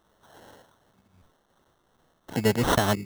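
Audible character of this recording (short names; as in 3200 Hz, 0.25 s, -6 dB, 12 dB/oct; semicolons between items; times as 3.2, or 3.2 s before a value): a quantiser's noise floor 12-bit, dither triangular; tremolo triangle 2.6 Hz, depth 40%; aliases and images of a low sample rate 2400 Hz, jitter 0%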